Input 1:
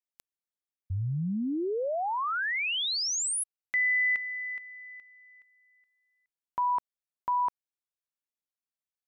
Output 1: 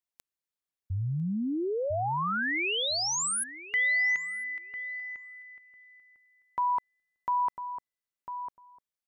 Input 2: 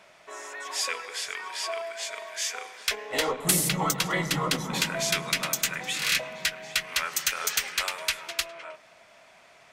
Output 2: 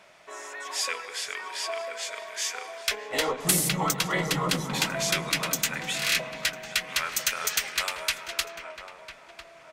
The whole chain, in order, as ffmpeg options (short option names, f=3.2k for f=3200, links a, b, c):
-filter_complex "[0:a]asplit=2[a][b];[b]adelay=1000,lowpass=f=1k:p=1,volume=-7dB,asplit=2[c][d];[d]adelay=1000,lowpass=f=1k:p=1,volume=0.17,asplit=2[e][f];[f]adelay=1000,lowpass=f=1k:p=1,volume=0.17[g];[a][c][e][g]amix=inputs=4:normalize=0"